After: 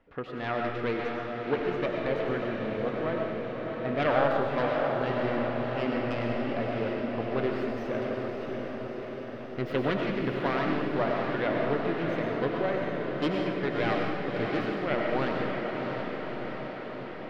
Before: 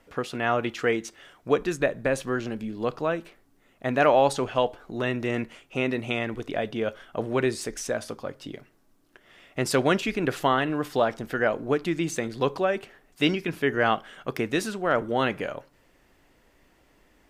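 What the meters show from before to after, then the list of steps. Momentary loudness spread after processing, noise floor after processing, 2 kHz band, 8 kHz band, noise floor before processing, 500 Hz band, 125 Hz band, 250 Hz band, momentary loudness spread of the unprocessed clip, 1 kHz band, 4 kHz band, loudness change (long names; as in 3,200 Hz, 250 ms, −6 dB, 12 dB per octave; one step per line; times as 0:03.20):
8 LU, −38 dBFS, −4.0 dB, below −20 dB, −63 dBFS, −2.5 dB, −1.0 dB, −1.5 dB, 10 LU, −3.5 dB, −6.0 dB, −3.5 dB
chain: phase distortion by the signal itself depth 0.3 ms
high-frequency loss of the air 340 metres
on a send: feedback delay with all-pass diffusion 640 ms, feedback 69%, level −4.5 dB
on the sum: comb and all-pass reverb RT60 1.2 s, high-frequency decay 0.95×, pre-delay 60 ms, DRR 1.5 dB
level −5 dB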